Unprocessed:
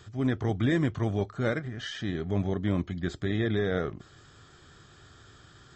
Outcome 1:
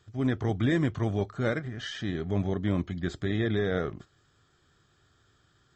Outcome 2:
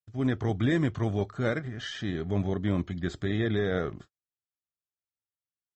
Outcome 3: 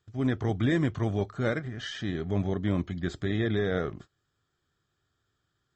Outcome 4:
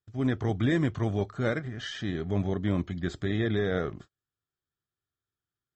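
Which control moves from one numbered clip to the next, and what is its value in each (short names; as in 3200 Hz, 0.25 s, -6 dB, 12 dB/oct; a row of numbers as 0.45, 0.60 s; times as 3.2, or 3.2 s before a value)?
gate, range: -12, -56, -24, -40 dB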